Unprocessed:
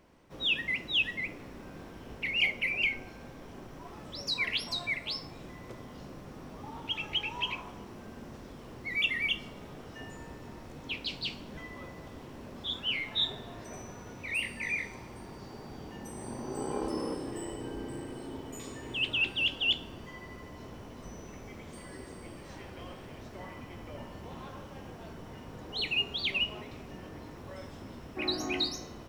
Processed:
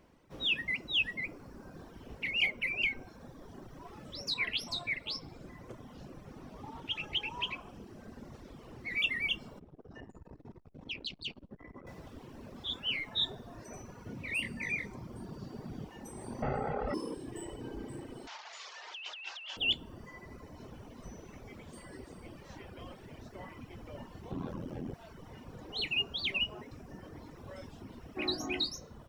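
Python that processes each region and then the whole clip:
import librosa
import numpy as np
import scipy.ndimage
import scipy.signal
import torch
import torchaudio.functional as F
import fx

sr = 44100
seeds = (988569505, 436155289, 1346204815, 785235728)

y = fx.chain(x, sr, fx.echo_wet_highpass(ms=63, feedback_pct=78, hz=1700.0, wet_db=-18.0),
    fx.doppler_dist(depth_ms=0.12), at=(4.3, 9.0))
y = fx.chain(y, sr, fx.envelope_sharpen(power=1.5),
    fx.transformer_sat(knee_hz=810.0), at=(9.59, 11.87))
y = fx.chain(y, sr, fx.peak_eq(hz=170.0, db=7.5, octaves=1.8),
    fx.notch(hz=830.0, q=16.0), at=(14.06, 15.85))
y = fx.chain(y, sr, fx.lowpass_res(hz=2000.0, q=2.1),
    fx.comb(ms=1.5, depth=0.86),
    fx.env_flatten(amount_pct=100), at=(16.42, 16.94))
y = fx.chain(y, sr, fx.delta_mod(bps=32000, step_db=-38.0),
    fx.highpass(hz=720.0, slope=24),
    fx.over_compress(threshold_db=-40.0, ratio=-1.0), at=(18.27, 19.57))
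y = fx.chain(y, sr, fx.peak_eq(hz=210.0, db=14.0, octaves=2.4),
    fx.ring_mod(carrier_hz=42.0),
    fx.env_flatten(amount_pct=50), at=(24.31, 24.94))
y = fx.dereverb_blind(y, sr, rt60_s=1.2)
y = fx.low_shelf(y, sr, hz=470.0, db=2.5)
y = F.gain(torch.from_numpy(y), -2.0).numpy()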